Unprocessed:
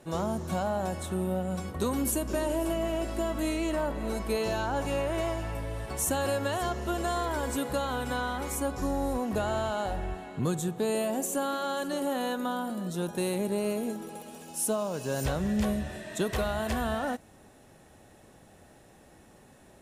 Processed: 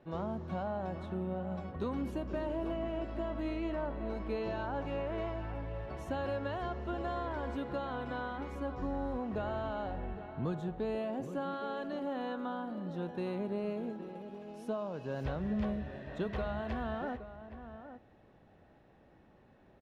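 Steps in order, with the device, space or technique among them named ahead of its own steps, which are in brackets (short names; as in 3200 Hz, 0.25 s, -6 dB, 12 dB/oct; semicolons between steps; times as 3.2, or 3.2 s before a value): shout across a valley (air absorption 300 m; outdoor echo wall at 140 m, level -11 dB); gain -6 dB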